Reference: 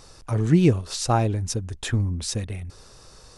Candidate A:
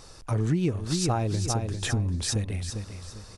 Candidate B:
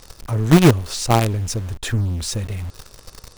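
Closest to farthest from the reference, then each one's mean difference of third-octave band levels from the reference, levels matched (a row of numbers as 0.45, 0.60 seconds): B, A; 4.5, 6.5 decibels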